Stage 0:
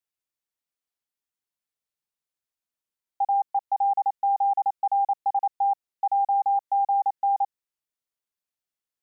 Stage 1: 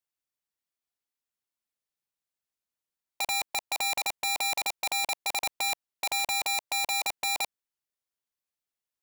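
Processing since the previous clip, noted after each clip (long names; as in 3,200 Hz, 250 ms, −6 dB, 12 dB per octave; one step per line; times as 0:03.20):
wrap-around overflow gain 22 dB
level −2 dB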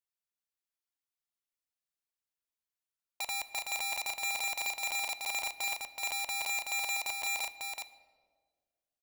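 parametric band 250 Hz −5.5 dB 2.8 octaves
single-tap delay 376 ms −4 dB
on a send at −13 dB: convolution reverb RT60 1.7 s, pre-delay 3 ms
on the sum: level −6 dB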